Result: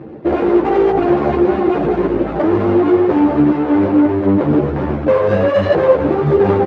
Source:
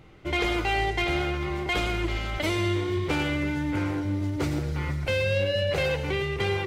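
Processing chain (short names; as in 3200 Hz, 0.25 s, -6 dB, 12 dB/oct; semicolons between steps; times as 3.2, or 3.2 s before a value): median filter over 41 samples; reverb RT60 1.3 s, pre-delay 13 ms, DRR 5.5 dB; reverb removal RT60 0.61 s; tilt shelf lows +6 dB, about 1100 Hz; one-sided clip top -26.5 dBFS; BPF 240–2600 Hz; echo 92 ms -15.5 dB; maximiser +25.5 dB; ensemble effect; gain -1.5 dB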